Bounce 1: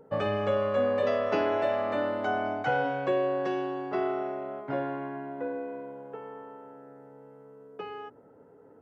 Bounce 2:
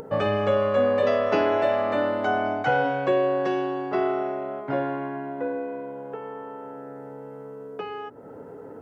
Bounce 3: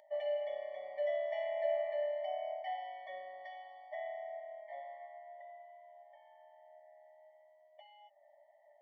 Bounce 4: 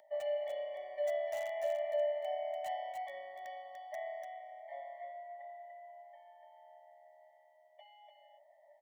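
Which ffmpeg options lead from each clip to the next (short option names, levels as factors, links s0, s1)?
-af "acompressor=mode=upward:threshold=0.0158:ratio=2.5,volume=1.78"
-filter_complex "[0:a]flanger=delay=9.2:depth=4.1:regen=86:speed=0.38:shape=triangular,asplit=3[s0][s1][s2];[s0]bandpass=f=530:t=q:w=8,volume=1[s3];[s1]bandpass=f=1840:t=q:w=8,volume=0.501[s4];[s2]bandpass=f=2480:t=q:w=8,volume=0.355[s5];[s3][s4][s5]amix=inputs=3:normalize=0,afftfilt=real='re*eq(mod(floor(b*sr/1024/590),2),1)':imag='im*eq(mod(floor(b*sr/1024/590),2),1)':win_size=1024:overlap=0.75,volume=1.88"
-filter_complex "[0:a]acrossover=split=870|1100|1600[s0][s1][s2][s3];[s3]aeval=exprs='(mod(237*val(0)+1,2)-1)/237':c=same[s4];[s0][s1][s2][s4]amix=inputs=4:normalize=0,aecho=1:1:293:0.562"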